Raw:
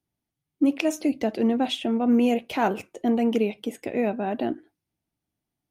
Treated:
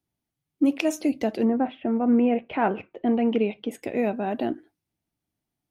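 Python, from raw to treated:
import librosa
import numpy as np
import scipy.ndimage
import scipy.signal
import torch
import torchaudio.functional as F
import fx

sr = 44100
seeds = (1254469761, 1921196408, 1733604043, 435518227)

y = fx.lowpass(x, sr, hz=fx.line((1.44, 1700.0), (3.7, 3900.0)), slope=24, at=(1.44, 3.7), fade=0.02)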